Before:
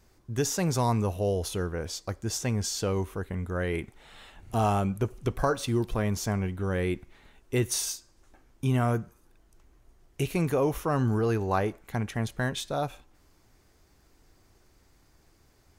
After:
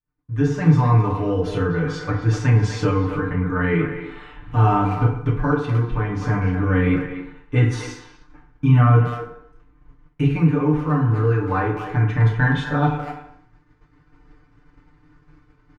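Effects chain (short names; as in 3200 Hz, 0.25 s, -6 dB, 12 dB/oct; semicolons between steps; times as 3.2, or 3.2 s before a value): LPF 1800 Hz 12 dB/oct; notch 640 Hz, Q 12; comb 6.7 ms, depth 86%; speakerphone echo 0.25 s, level -9 dB; FDN reverb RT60 0.73 s, low-frequency decay 0.8×, high-frequency decay 0.6×, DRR -3 dB; AGC gain up to 8.5 dB; expander -40 dBFS; band shelf 530 Hz -8.5 dB; 1–3.36 mismatched tape noise reduction encoder only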